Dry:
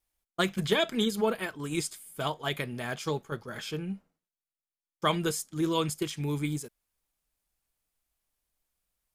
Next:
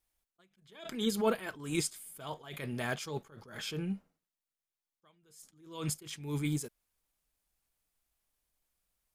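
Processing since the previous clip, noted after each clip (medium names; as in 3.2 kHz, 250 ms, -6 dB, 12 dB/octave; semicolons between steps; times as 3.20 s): attacks held to a fixed rise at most 100 dB/s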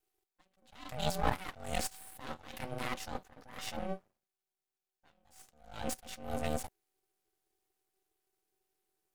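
ring modulator 380 Hz; half-wave rectifier; trim +4.5 dB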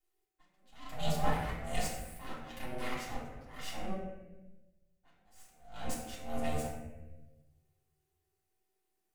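reverberation RT60 1.1 s, pre-delay 3 ms, DRR -7.5 dB; trim -8.5 dB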